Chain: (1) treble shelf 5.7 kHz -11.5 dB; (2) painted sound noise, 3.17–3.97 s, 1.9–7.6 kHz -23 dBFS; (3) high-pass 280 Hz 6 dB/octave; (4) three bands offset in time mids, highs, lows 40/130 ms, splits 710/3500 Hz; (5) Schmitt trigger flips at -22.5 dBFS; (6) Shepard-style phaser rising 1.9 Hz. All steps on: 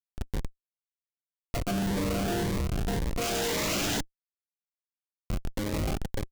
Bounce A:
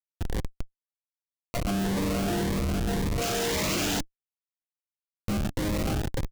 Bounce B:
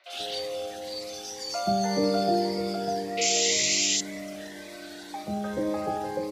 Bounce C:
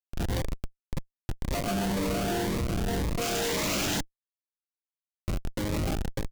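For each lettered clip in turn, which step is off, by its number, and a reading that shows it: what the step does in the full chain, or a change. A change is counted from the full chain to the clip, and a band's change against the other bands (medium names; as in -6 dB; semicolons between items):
3, 250 Hz band +1.5 dB; 5, crest factor change +7.0 dB; 1, momentary loudness spread change +3 LU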